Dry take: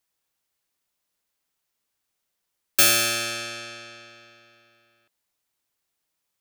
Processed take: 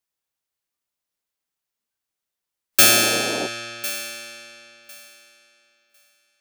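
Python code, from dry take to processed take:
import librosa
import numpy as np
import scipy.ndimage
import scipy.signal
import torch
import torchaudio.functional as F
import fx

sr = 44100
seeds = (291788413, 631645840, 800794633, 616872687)

y = fx.echo_thinned(x, sr, ms=1052, feedback_pct=17, hz=360.0, wet_db=-15)
y = fx.dmg_noise_band(y, sr, seeds[0], low_hz=200.0, high_hz=740.0, level_db=-32.0, at=(2.81, 3.46), fade=0.02)
y = fx.noise_reduce_blind(y, sr, reduce_db=10)
y = F.gain(torch.from_numpy(y), 4.0).numpy()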